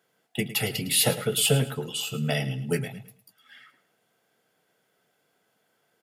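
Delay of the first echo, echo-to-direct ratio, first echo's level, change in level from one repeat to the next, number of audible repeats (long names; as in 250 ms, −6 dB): 108 ms, −13.5 dB, −14.0 dB, −11.0 dB, 2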